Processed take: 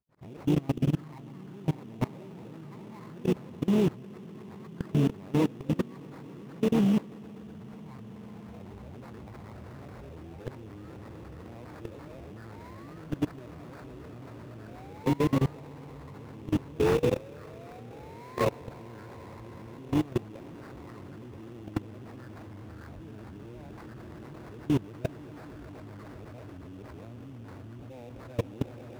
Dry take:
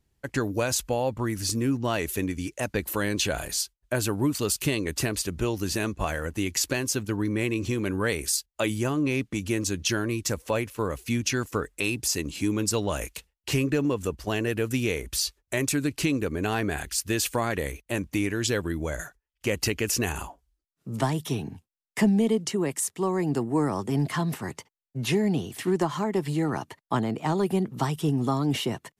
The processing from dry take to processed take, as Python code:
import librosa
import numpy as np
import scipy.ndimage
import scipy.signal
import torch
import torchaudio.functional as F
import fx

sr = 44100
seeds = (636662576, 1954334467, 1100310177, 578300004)

p1 = np.flip(x).copy()
p2 = fx.low_shelf(p1, sr, hz=64.0, db=6.0)
p3 = fx.spec_paint(p2, sr, seeds[0], shape='rise', start_s=16.8, length_s=1.65, low_hz=420.0, high_hz=1100.0, level_db=-23.0)
p4 = fx.echo_pitch(p3, sr, ms=86, semitones=3, count=3, db_per_echo=-6.0)
p5 = fx.phaser_stages(p4, sr, stages=12, low_hz=470.0, high_hz=3300.0, hz=0.61, feedback_pct=40)
p6 = p5 + fx.echo_swell(p5, sr, ms=124, loudest=5, wet_db=-13, dry=0)
p7 = fx.sample_hold(p6, sr, seeds[1], rate_hz=3100.0, jitter_pct=20)
p8 = 10.0 ** (-12.0 / 20.0) * np.tanh(p7 / 10.0 ** (-12.0 / 20.0))
p9 = scipy.signal.sosfilt(scipy.signal.butter(2, 46.0, 'highpass', fs=sr, output='sos'), p8)
p10 = fx.level_steps(p9, sr, step_db=22)
y = fx.high_shelf(p10, sr, hz=2600.0, db=-12.0)